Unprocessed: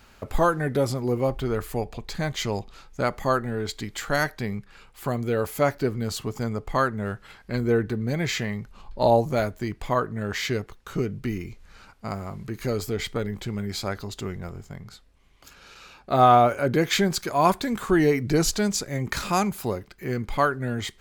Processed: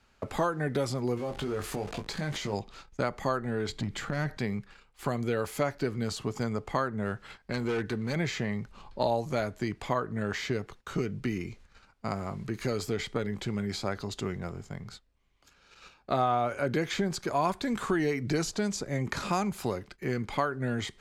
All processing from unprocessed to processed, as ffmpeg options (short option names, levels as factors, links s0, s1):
-filter_complex "[0:a]asettb=1/sr,asplit=3[s0][s1][s2];[s0]atrim=end=1.174[s3];[s1]atrim=start=1.17:end=2.53,asetpts=PTS-STARTPTS,afade=t=in:d=0.004:c=qsin,afade=t=out:st=1.356:d=0.004:c=qsin,aeval=exprs='val(0)+0.5*0.0178*sgn(val(0))':c=same,acompressor=threshold=0.0398:ratio=6:attack=3.2:release=140:knee=1:detection=peak,asplit=2[s4][s5];[s5]adelay=20,volume=0.447[s6];[s4][s6]amix=inputs=2:normalize=0,atrim=end_sample=59976[s7];[s2]atrim=start=2.526[s8];[s3][s7]acrossfade=d=0.004:c1=hsin:c2=qsin[s9];[s9][s8]acrossfade=d=0.004:c1=qsin:c2=hsin,asettb=1/sr,asplit=3[s10][s11][s12];[s10]atrim=end=3.694[s13];[s11]atrim=start=3.69:end=4.37,asetpts=PTS-STARTPTS,afade=t=in:d=0.004:c=qsin,afade=t=out:st=0.676:d=0.004:c=qsin,bass=f=250:g=14,treble=f=4000:g=-4,acompressor=threshold=0.0631:ratio=4:attack=3.2:release=140:knee=1:detection=peak,asoftclip=type=hard:threshold=0.0794[s14];[s12]atrim=start=4.366[s15];[s13][s14]acrossfade=d=0.004:c1=hsin:c2=qsin[s16];[s16][s15]acrossfade=d=0.004:c1=qsin:c2=hsin,asettb=1/sr,asplit=3[s17][s18][s19];[s17]atrim=end=7.524[s20];[s18]atrim=start=7.52:end=8.16,asetpts=PTS-STARTPTS,afade=t=in:d=0.004:c=qsin,afade=t=out:st=0.636:d=0.004:c=qsin,tiltshelf=f=780:g=-4,asoftclip=type=hard:threshold=0.0596[s21];[s19]atrim=start=8.156[s22];[s20][s21]acrossfade=d=0.004:c1=hsin:c2=qsin[s23];[s23][s22]acrossfade=d=0.004:c1=qsin:c2=hsin,agate=range=0.251:threshold=0.00501:ratio=16:detection=peak,lowpass=9100,acrossover=split=100|1200[s24][s25][s26];[s24]acompressor=threshold=0.00316:ratio=4[s27];[s25]acompressor=threshold=0.0447:ratio=4[s28];[s26]acompressor=threshold=0.0158:ratio=4[s29];[s27][s28][s29]amix=inputs=3:normalize=0"